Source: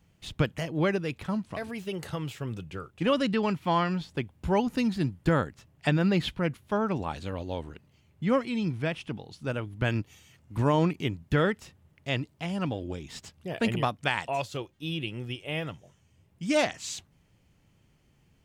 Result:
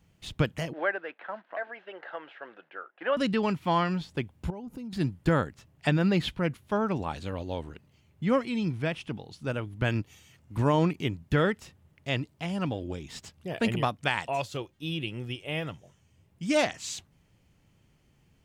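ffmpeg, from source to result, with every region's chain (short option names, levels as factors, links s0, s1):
-filter_complex "[0:a]asettb=1/sr,asplit=3[s0][s1][s2];[s0]atrim=end=0.734[s3];[s1]atrim=start=0.73:end=3.17,asetpts=PTS-STARTPTS,afade=t=in:d=0.004:c=qsin,afade=t=out:st=2.436:d=0.004:c=qsin,acrusher=bits=6:mode=log:mix=0:aa=0.000001,highpass=f=420:w=0.5412,highpass=f=420:w=1.3066,equalizer=f=420:t=q:w=4:g=-8,equalizer=f=690:t=q:w=4:g=4,equalizer=f=1100:t=q:w=4:g=-3,equalizer=f=1600:t=q:w=4:g=8,equalizer=f=2400:t=q:w=4:g=-6,lowpass=f=2500:w=0.5412,lowpass=f=2500:w=1.3066[s4];[s2]atrim=start=3.166[s5];[s3][s4]acrossfade=d=0.004:c1=hsin:c2=qsin[s6];[s6][s5]acrossfade=d=0.004:c1=qsin:c2=hsin,asettb=1/sr,asplit=3[s7][s8][s9];[s7]atrim=end=4.504[s10];[s8]atrim=start=4.5:end=4.93,asetpts=PTS-STARTPTS,afade=t=in:d=0.004:c=qsin,afade=t=out:st=0.426:d=0.004:c=qsin,equalizer=f=3700:w=0.32:g=-12,bandreject=f=1800:w=6.8,acompressor=threshold=0.0141:ratio=6:attack=3.2:release=140:knee=1:detection=peak[s11];[s9]atrim=start=4.926[s12];[s10][s11]acrossfade=d=0.004:c1=hsin:c2=qsin[s13];[s13][s12]acrossfade=d=0.004:c1=qsin:c2=hsin"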